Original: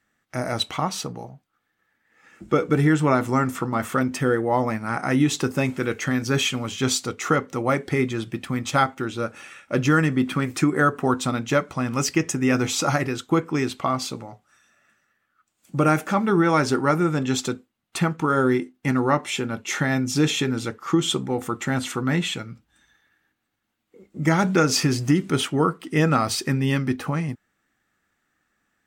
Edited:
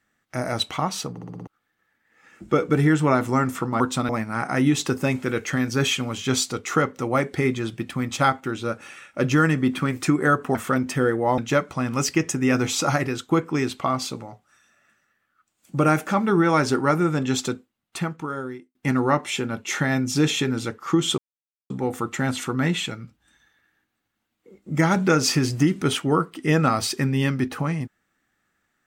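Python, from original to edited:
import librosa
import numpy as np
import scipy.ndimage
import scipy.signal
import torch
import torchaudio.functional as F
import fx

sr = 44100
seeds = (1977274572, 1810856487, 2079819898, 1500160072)

y = fx.edit(x, sr, fx.stutter_over(start_s=1.11, slice_s=0.06, count=6),
    fx.swap(start_s=3.8, length_s=0.83, other_s=11.09, other_length_s=0.29),
    fx.fade_out_span(start_s=17.51, length_s=1.24),
    fx.insert_silence(at_s=21.18, length_s=0.52), tone=tone)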